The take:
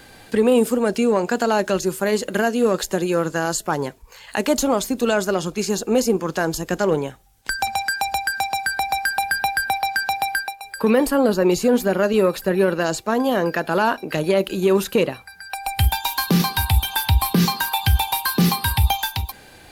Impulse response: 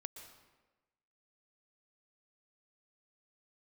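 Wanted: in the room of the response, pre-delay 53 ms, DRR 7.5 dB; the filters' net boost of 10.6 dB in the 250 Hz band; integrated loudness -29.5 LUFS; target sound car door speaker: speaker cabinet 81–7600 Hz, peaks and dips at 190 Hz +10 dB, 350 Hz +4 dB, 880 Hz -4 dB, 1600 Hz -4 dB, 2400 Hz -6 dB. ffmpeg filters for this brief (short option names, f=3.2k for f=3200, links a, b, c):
-filter_complex "[0:a]equalizer=f=250:t=o:g=7.5,asplit=2[a][b];[1:a]atrim=start_sample=2205,adelay=53[c];[b][c]afir=irnorm=-1:irlink=0,volume=-3.5dB[d];[a][d]amix=inputs=2:normalize=0,highpass=81,equalizer=f=190:t=q:w=4:g=10,equalizer=f=350:t=q:w=4:g=4,equalizer=f=880:t=q:w=4:g=-4,equalizer=f=1.6k:t=q:w=4:g=-4,equalizer=f=2.4k:t=q:w=4:g=-6,lowpass=f=7.6k:w=0.5412,lowpass=f=7.6k:w=1.3066,volume=-15.5dB"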